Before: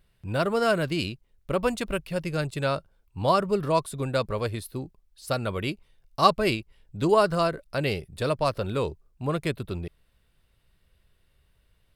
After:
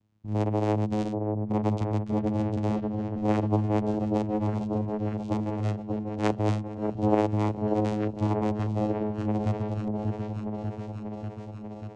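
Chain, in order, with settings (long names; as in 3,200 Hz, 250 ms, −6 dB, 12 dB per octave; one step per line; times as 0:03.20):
flat-topped bell 1,200 Hz −9 dB 1 octave
channel vocoder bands 4, saw 106 Hz
echo whose low-pass opens from repeat to repeat 590 ms, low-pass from 750 Hz, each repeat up 1 octave, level −3 dB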